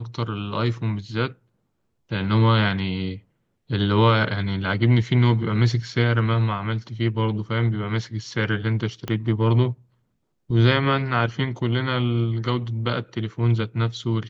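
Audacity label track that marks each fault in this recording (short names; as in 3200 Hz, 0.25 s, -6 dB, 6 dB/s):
9.080000	9.080000	pop -14 dBFS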